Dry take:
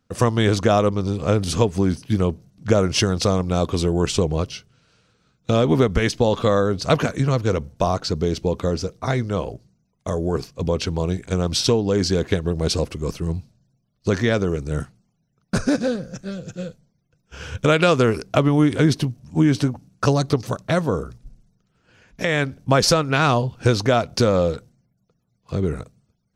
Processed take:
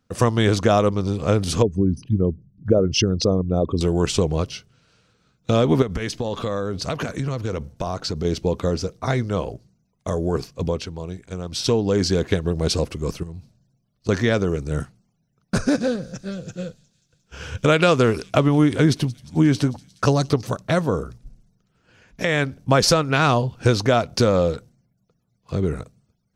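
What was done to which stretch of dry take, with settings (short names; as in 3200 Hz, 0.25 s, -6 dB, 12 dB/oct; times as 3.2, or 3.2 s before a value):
1.62–3.81 formant sharpening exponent 2
5.82–8.25 compressor, threshold -21 dBFS
10.62–11.78 dip -9 dB, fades 0.27 s
13.23–14.09 compressor, threshold -32 dBFS
15.63–20.32 thin delay 0.178 s, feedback 68%, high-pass 4300 Hz, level -17 dB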